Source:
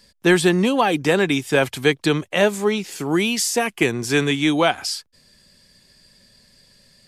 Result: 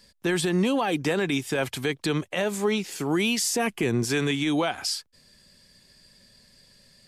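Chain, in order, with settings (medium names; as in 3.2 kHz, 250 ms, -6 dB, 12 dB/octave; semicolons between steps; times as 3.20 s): 3.41–4.05 s: bass shelf 500 Hz +7 dB; peak limiter -13.5 dBFS, peak gain reduction 11.5 dB; trim -2.5 dB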